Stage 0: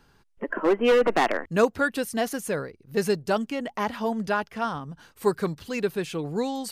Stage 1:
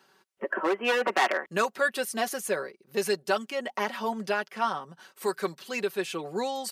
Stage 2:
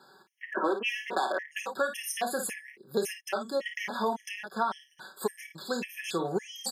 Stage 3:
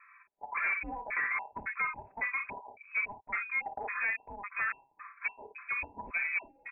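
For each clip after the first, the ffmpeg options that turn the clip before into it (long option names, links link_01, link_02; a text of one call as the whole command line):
ffmpeg -i in.wav -filter_complex "[0:a]highpass=360,aecho=1:1:5.3:0.62,acrossover=split=1000[link_01][link_02];[link_01]alimiter=limit=-20dB:level=0:latency=1:release=315[link_03];[link_03][link_02]amix=inputs=2:normalize=0" out.wav
ffmpeg -i in.wav -af "aecho=1:1:29|54:0.316|0.335,acompressor=threshold=-30dB:ratio=6,afftfilt=real='re*gt(sin(2*PI*1.8*pts/sr)*(1-2*mod(floor(b*sr/1024/1700),2)),0)':imag='im*gt(sin(2*PI*1.8*pts/sr)*(1-2*mod(floor(b*sr/1024/1700),2)),0)':win_size=1024:overlap=0.75,volume=5.5dB" out.wav
ffmpeg -i in.wav -af "asoftclip=type=tanh:threshold=-26dB,lowpass=frequency=2300:width_type=q:width=0.5098,lowpass=frequency=2300:width_type=q:width=0.6013,lowpass=frequency=2300:width_type=q:width=0.9,lowpass=frequency=2300:width_type=q:width=2.563,afreqshift=-2700" out.wav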